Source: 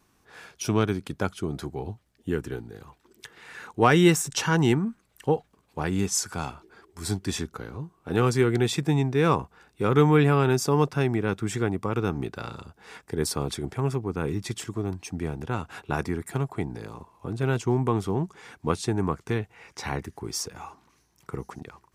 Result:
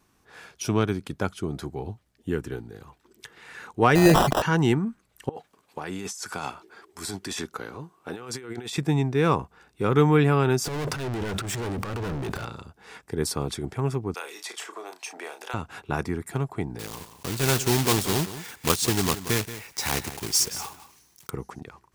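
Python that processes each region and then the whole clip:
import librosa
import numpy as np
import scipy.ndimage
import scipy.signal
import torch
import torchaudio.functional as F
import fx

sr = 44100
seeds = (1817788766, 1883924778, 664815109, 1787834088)

y = fx.chain(x, sr, fx.sample_hold(seeds[0], rate_hz=2200.0, jitter_pct=0),
    fx.peak_eq(hz=670.0, db=6.0, octaves=0.98),
    fx.sustainer(db_per_s=44.0), at=(3.95, 4.42))
y = fx.chain(y, sr, fx.highpass(hz=450.0, slope=6),
    fx.over_compress(threshold_db=-35.0, ratio=-1.0), at=(5.29, 8.78))
y = fx.chain(y, sr, fx.overload_stage(gain_db=27.5),
    fx.leveller(passes=3),
    fx.transient(attack_db=-12, sustain_db=11), at=(10.64, 12.45))
y = fx.chain(y, sr, fx.highpass(hz=540.0, slope=24),
    fx.doubler(ms=33.0, db=-8),
    fx.band_squash(depth_pct=100), at=(14.14, 15.54))
y = fx.chain(y, sr, fx.block_float(bits=3),
    fx.high_shelf(hz=2800.0, db=11.0),
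    fx.echo_single(ms=178, db=-13.0), at=(16.79, 21.31))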